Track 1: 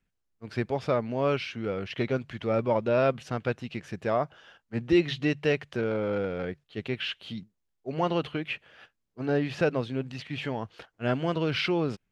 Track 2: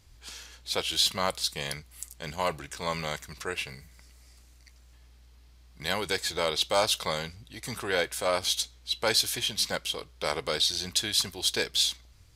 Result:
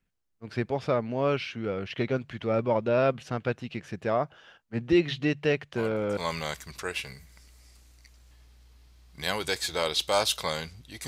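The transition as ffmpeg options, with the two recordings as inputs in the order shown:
-filter_complex "[1:a]asplit=2[s0][s1];[0:a]apad=whole_dur=11.07,atrim=end=11.07,atrim=end=6.172[s2];[s1]atrim=start=2.788:end=7.69[s3];[s0]atrim=start=2.38:end=2.79,asetpts=PTS-STARTPTS,volume=0.237,afade=t=in:d=0.004:c=hsin,afade=t=out:st=0.406:d=0.004:c=hsin,adelay=5760[s4];[s2][s3]acrossfade=d=0.004:c1=hsin:c2=hsin[s5];[s5][s4]amix=inputs=2:normalize=0"

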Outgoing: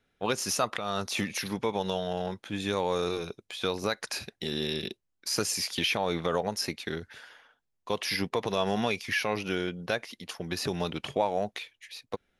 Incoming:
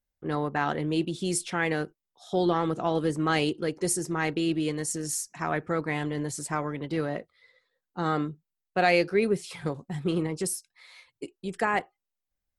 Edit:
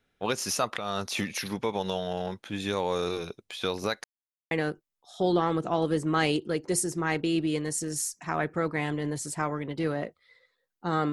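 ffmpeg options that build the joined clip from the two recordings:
-filter_complex "[0:a]apad=whole_dur=11.12,atrim=end=11.12,asplit=2[s0][s1];[s0]atrim=end=4.04,asetpts=PTS-STARTPTS,afade=t=out:st=4.036:d=0.004:c=hsin[s2];[s1]atrim=start=4.04:end=4.51,asetpts=PTS-STARTPTS,volume=0[s3];[1:a]atrim=start=1.64:end=8.25,asetpts=PTS-STARTPTS,afade=t=in:d=0.004:c=hsin[s4];[s2][s3][s4]concat=n=3:v=0:a=1"

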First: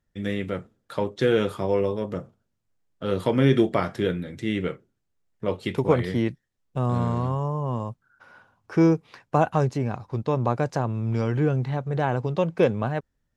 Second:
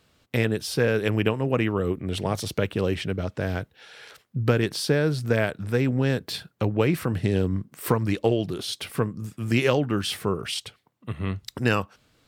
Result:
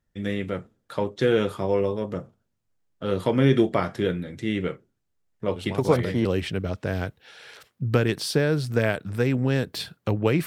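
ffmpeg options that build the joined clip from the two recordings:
-filter_complex "[1:a]asplit=2[s0][s1];[0:a]apad=whole_dur=10.46,atrim=end=10.46,atrim=end=6.252[s2];[s1]atrim=start=2.788:end=7[s3];[s0]atrim=start=2.1:end=2.79,asetpts=PTS-STARTPTS,volume=0.376,afade=t=in:d=0.004:c=hsin,afade=t=out:st=0.686:d=0.004:c=hsin,adelay=5560[s4];[s2][s3]acrossfade=d=0.004:c1=hsin:c2=hsin[s5];[s5][s4]amix=inputs=2:normalize=0"

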